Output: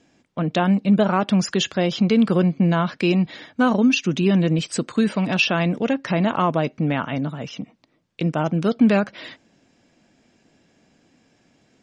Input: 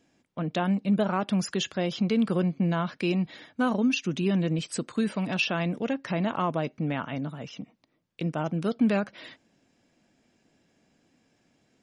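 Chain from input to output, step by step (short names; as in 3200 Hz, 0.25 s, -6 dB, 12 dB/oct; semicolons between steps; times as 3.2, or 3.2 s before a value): LPF 8400 Hz 24 dB/oct; gain +7.5 dB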